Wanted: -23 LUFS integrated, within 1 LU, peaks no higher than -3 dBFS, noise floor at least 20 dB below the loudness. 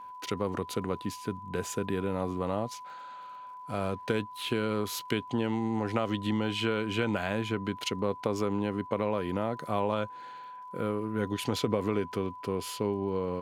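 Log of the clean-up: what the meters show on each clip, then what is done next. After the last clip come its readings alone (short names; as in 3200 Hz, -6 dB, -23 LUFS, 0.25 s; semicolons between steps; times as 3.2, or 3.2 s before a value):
ticks 35/s; steady tone 1000 Hz; tone level -42 dBFS; loudness -32.0 LUFS; peak -12.0 dBFS; loudness target -23.0 LUFS
-> de-click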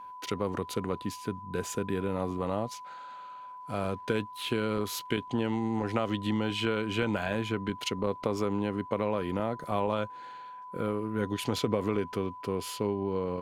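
ticks 0.22/s; steady tone 1000 Hz; tone level -42 dBFS
-> notch 1000 Hz, Q 30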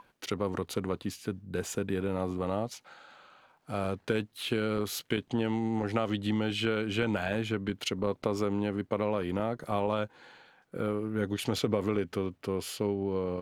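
steady tone none; loudness -32.0 LUFS; peak -12.5 dBFS; loudness target -23.0 LUFS
-> gain +9 dB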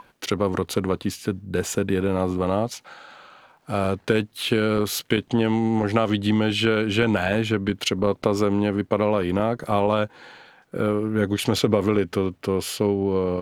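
loudness -23.0 LUFS; peak -3.5 dBFS; noise floor -58 dBFS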